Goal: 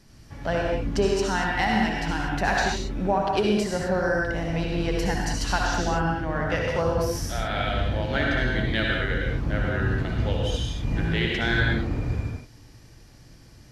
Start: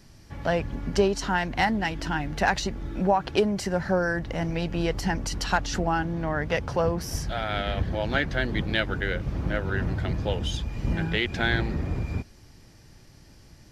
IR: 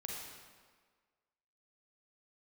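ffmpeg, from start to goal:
-filter_complex "[1:a]atrim=start_sample=2205,atrim=end_sample=6615,asetrate=26901,aresample=44100[a];[0:a][a]afir=irnorm=-1:irlink=0"

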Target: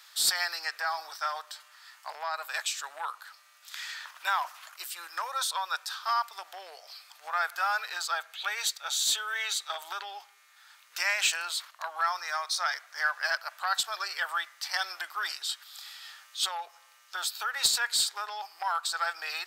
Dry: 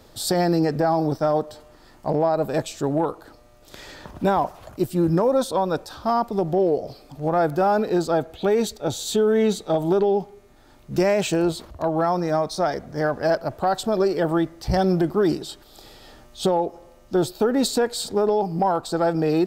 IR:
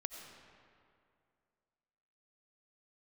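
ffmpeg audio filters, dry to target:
-filter_complex "[0:a]highpass=f=1.3k:w=0.5412,highpass=f=1.3k:w=1.3066,highshelf=f=6.8k:g=10.5,asplit=2[a][b];[b]highpass=f=720:p=1,volume=9dB,asoftclip=type=tanh:threshold=-6dB[c];[a][c]amix=inputs=2:normalize=0,lowpass=f=2.7k:p=1,volume=-6dB,volume=1dB"

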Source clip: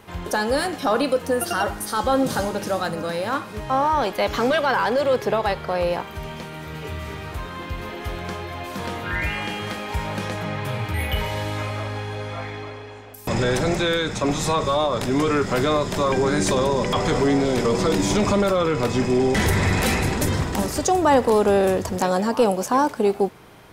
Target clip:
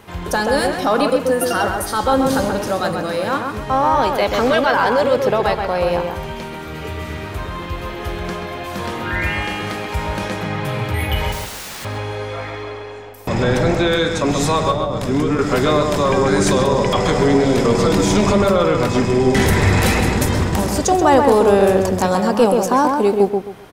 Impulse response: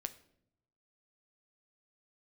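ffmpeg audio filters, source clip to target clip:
-filter_complex "[0:a]asettb=1/sr,asplit=3[a][b][c];[a]atrim=end=11.324[d];[b]atrim=start=11.32:end=11.85,asetpts=PTS-STARTPTS,afade=t=in:d=0.004:c=qsin,afade=t=out:st=0.526:d=0.004:c=qsin,aeval=exprs='(mod(33.5*val(0)+1,2)-1)/33.5':c=same[e];[c]atrim=start=11.846[f];[d][e]acrossfade=d=0.004:c1=hsin:c2=qsin[g];[g][f]acrossfade=d=0.004:c1=qsin:c2=hsin,asettb=1/sr,asplit=3[h][i][j];[h]atrim=end=13.094[k];[i]atrim=start=13.09:end=13.92,asetpts=PTS-STARTPTS,afade=t=in:d=0.004:c=qsin,afade=t=out:st=0.826:d=0.004:c=qsin,equalizer=f=9.9k:w=0.46:g=-7.5[l];[j]atrim=start=13.916[m];[k][l]acrossfade=d=0.004:c1=hsin:c2=qsin[n];[n][m]acrossfade=d=0.004:c1=qsin:c2=hsin,asettb=1/sr,asplit=3[o][p][q];[o]atrim=end=14.714[r];[p]atrim=start=14.71:end=15.39,asetpts=PTS-STARTPTS,afade=t=in:d=0.004:c=qsin,afade=t=out:st=0.676:d=0.004:c=qsin,acrossover=split=360[s][t];[t]acompressor=threshold=-28dB:ratio=6[u];[s][u]amix=inputs=2:normalize=0[v];[q]atrim=start=15.386[w];[r][v]acrossfade=d=0.004:c1=hsin:c2=qsin[x];[x][w]acrossfade=d=0.004:c1=qsin:c2=hsin,asplit=2[y][z];[z]adelay=132,lowpass=f=2k:p=1,volume=-3.5dB,asplit=2[aa][ab];[ab]adelay=132,lowpass=f=2k:p=1,volume=0.28,asplit=2[ac][ad];[ad]adelay=132,lowpass=f=2k:p=1,volume=0.28,asplit=2[ae][af];[af]adelay=132,lowpass=f=2k:p=1,volume=0.28[ag];[aa][ac][ae][ag]amix=inputs=4:normalize=0[ah];[y][ah]amix=inputs=2:normalize=0,volume=3.5dB"

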